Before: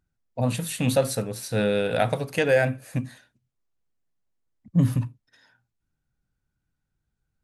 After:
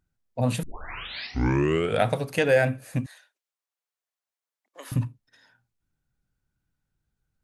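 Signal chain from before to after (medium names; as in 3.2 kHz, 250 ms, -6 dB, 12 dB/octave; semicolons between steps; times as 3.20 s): 0.63 s: tape start 1.41 s; 3.06–4.92 s: Bessel high-pass 770 Hz, order 8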